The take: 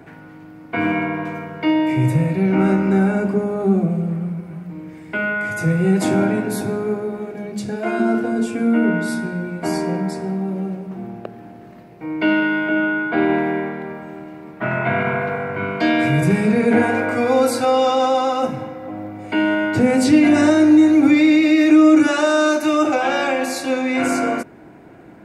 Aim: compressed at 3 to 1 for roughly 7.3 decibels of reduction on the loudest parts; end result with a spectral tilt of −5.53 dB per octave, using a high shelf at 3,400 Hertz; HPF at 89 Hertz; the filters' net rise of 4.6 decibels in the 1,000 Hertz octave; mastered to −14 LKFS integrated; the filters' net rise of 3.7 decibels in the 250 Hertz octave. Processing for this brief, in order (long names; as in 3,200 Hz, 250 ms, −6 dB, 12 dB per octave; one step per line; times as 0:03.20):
high-pass filter 89 Hz
parametric band 250 Hz +4.5 dB
parametric band 1,000 Hz +5.5 dB
high-shelf EQ 3,400 Hz +7.5 dB
downward compressor 3 to 1, threshold −14 dBFS
level +4.5 dB